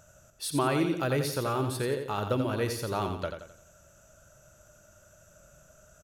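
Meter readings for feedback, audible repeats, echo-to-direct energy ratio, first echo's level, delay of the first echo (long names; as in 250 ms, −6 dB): 42%, 4, −6.0 dB, −7.0 dB, 87 ms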